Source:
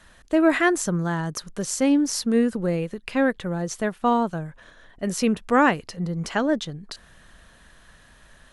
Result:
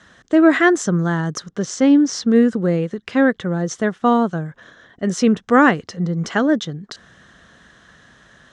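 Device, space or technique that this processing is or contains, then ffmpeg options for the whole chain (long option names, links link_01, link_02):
car door speaker: -filter_complex "[0:a]highpass=110,equalizer=frequency=600:width_type=q:width=4:gain=-4,equalizer=frequency=920:width_type=q:width=4:gain=-6,equalizer=frequency=2500:width_type=q:width=4:gain=-9,equalizer=frequency=4500:width_type=q:width=4:gain=-7,lowpass=frequency=6600:width=0.5412,lowpass=frequency=6600:width=1.3066,asettb=1/sr,asplit=3[link_01][link_02][link_03];[link_01]atrim=end=1.484[link_04];[link_02]atrim=start=1.48:end=2.36,asetpts=PTS-STARTPTS,afade=type=in:duration=0.004:curve=qsin,afade=type=out:start_time=0.876:duration=0.004:curve=qsin,lowpass=6400[link_05];[link_03]atrim=start=2.356[link_06];[link_04][link_05]acrossfade=duration=0.004:curve1=hsin:curve2=qsin[link_07];[link_07][link_06]acrossfade=duration=0.004:curve1=qsin:curve2=hsin,volume=7dB"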